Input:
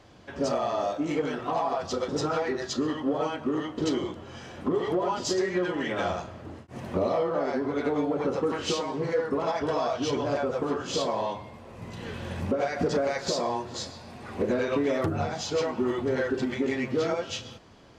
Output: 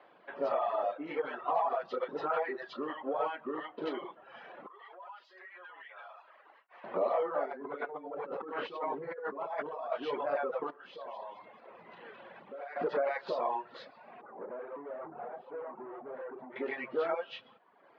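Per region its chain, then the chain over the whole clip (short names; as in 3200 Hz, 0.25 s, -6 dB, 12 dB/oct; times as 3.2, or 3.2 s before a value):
4.66–6.84 HPF 1100 Hz + compressor 3:1, threshold -47 dBFS
7.45–9.92 notches 60/120/180/240/300/360/420/480 Hz + negative-ratio compressor -34 dBFS + tilt -1.5 dB/oct
10.7–12.76 compressor 4:1, threshold -38 dBFS + thin delay 0.214 s, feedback 50%, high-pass 1700 Hz, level -6 dB
14.21–16.56 tube stage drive 33 dB, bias 0.4 + LPF 1000 Hz + echo 0.74 s -11 dB
whole clip: reverb removal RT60 0.94 s; Chebyshev band-pass 160–4300 Hz, order 3; three-band isolator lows -19 dB, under 430 Hz, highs -24 dB, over 2600 Hz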